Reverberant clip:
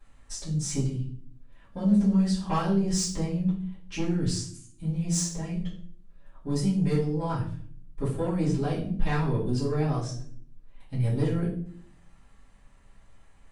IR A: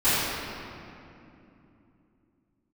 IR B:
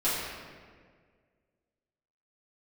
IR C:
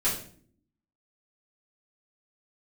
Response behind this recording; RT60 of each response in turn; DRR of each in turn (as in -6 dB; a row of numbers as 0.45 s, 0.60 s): C; 2.8 s, 1.8 s, 0.50 s; -20.5 dB, -12.5 dB, -10.5 dB